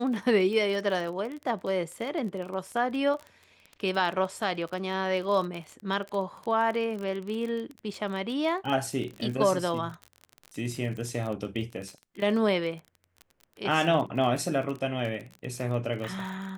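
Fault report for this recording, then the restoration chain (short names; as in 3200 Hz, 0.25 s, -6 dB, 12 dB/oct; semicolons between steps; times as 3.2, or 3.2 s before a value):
crackle 27/s -33 dBFS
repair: de-click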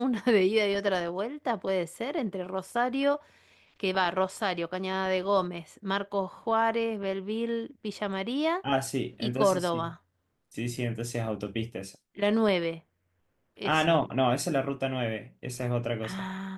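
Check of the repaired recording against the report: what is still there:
none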